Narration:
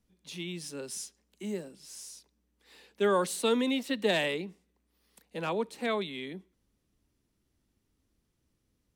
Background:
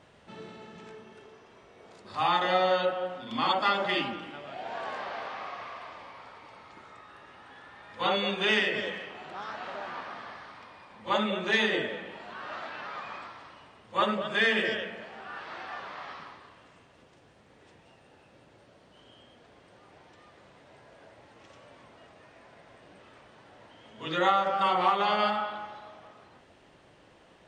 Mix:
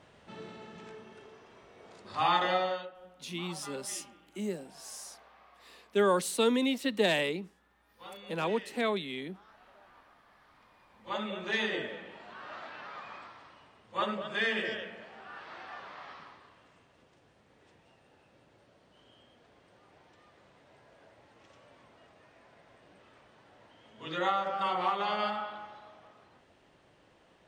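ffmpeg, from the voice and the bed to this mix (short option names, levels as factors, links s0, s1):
-filter_complex "[0:a]adelay=2950,volume=1.06[s0];[1:a]volume=5.01,afade=t=out:st=2.41:d=0.48:silence=0.105925,afade=t=in:st=10.26:d=1.37:silence=0.177828[s1];[s0][s1]amix=inputs=2:normalize=0"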